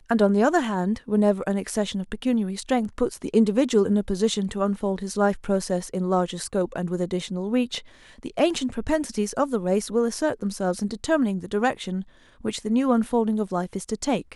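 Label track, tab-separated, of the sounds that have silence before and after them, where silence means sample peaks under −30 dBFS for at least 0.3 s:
8.230000	12.020000	sound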